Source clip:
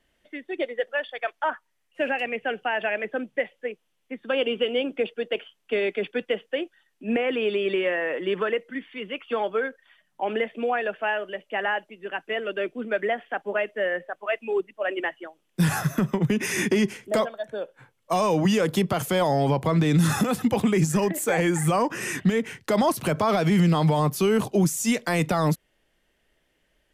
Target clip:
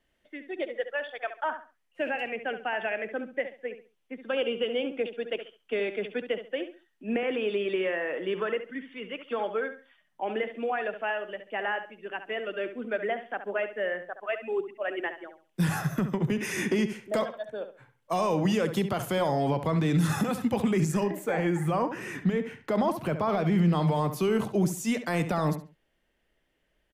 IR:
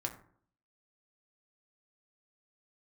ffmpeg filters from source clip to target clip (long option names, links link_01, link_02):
-filter_complex "[0:a]asetnsamples=nb_out_samples=441:pad=0,asendcmd='21.03 equalizer g -13;23.73 equalizer g -5',equalizer=frequency=8600:width=0.42:gain=-3,asplit=2[link_01][link_02];[link_02]adelay=69,lowpass=frequency=3900:poles=1,volume=-10dB,asplit=2[link_03][link_04];[link_04]adelay=69,lowpass=frequency=3900:poles=1,volume=0.27,asplit=2[link_05][link_06];[link_06]adelay=69,lowpass=frequency=3900:poles=1,volume=0.27[link_07];[link_01][link_03][link_05][link_07]amix=inputs=4:normalize=0,volume=-4.5dB"